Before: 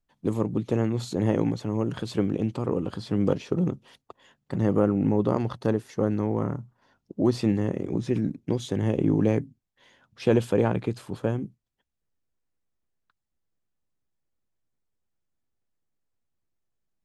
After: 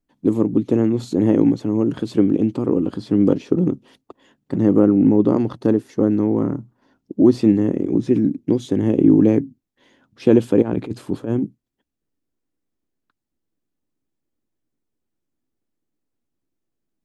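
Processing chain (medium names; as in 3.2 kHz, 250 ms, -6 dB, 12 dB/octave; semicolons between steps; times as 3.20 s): peaking EQ 290 Hz +13 dB 1.1 oct; 10.62–11.45 s: compressor with a negative ratio -21 dBFS, ratio -0.5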